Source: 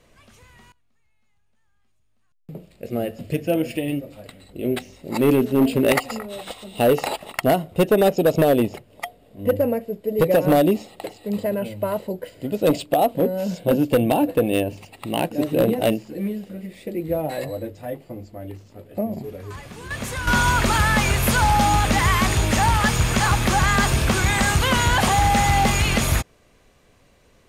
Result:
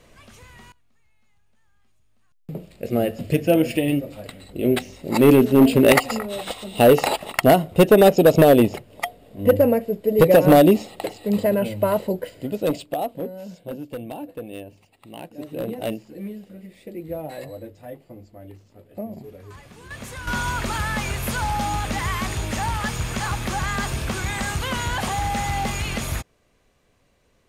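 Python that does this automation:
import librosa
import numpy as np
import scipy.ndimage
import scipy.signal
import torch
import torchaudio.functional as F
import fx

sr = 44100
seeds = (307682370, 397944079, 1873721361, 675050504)

y = fx.gain(x, sr, db=fx.line((12.15, 4.0), (12.76, -5.5), (13.81, -15.0), (15.22, -15.0), (15.91, -7.0)))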